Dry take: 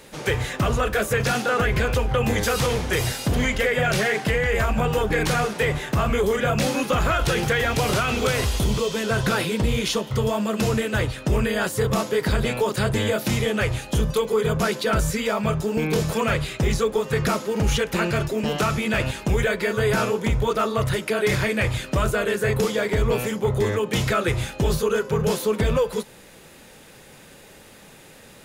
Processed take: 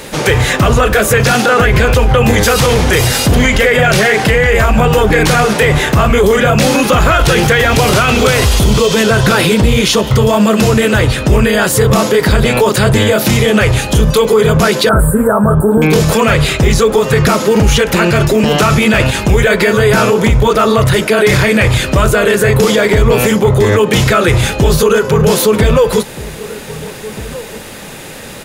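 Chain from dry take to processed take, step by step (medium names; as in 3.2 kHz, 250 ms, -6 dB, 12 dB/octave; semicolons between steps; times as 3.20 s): 14.89–15.82 s: Chebyshev band-stop 1.6–8.2 kHz, order 5; echo from a far wall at 270 m, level -22 dB; loudness maximiser +19 dB; trim -1 dB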